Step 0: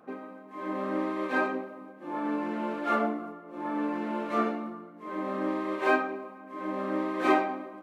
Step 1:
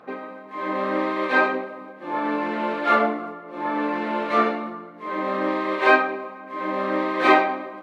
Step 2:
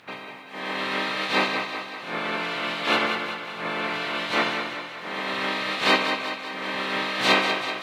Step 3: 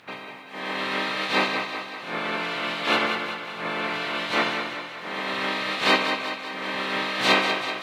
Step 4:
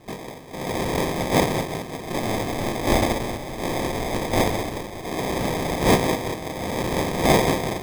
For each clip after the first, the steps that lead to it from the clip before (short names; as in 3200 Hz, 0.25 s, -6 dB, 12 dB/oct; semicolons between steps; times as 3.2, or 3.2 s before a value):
graphic EQ 125/500/1000/2000/4000 Hz +8/+7/+6/+9/+11 dB
spectral limiter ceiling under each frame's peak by 28 dB; thinning echo 0.191 s, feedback 60%, high-pass 220 Hz, level -7.5 dB; gain -3.5 dB
nothing audible
sample-and-hold 31×; gain +3 dB